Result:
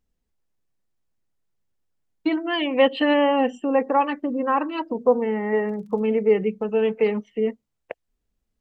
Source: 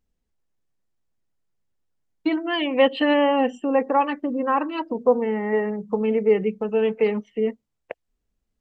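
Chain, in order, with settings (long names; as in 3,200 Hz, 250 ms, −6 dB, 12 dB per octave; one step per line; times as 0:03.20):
0:05.61–0:06.05: surface crackle 26 per second −43 dBFS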